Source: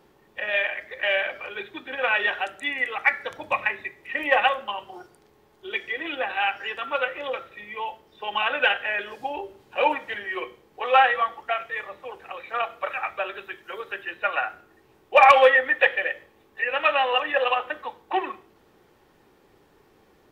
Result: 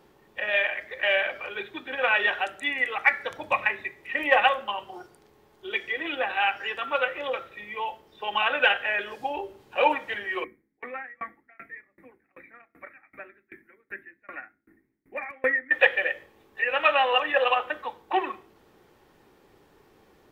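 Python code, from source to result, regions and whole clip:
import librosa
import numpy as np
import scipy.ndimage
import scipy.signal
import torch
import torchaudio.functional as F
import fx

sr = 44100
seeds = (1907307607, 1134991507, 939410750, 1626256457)

y = fx.chain(x, sr, fx.curve_eq(hz=(120.0, 280.0, 430.0, 830.0, 1200.0, 2100.0, 3000.0, 5000.0, 7000.0, 10000.0), db=(0, 12, -7, -13, -11, 6, -27, -19, -18, -3)),
    fx.tremolo_decay(direction='decaying', hz=2.6, depth_db=31), at=(10.44, 15.71))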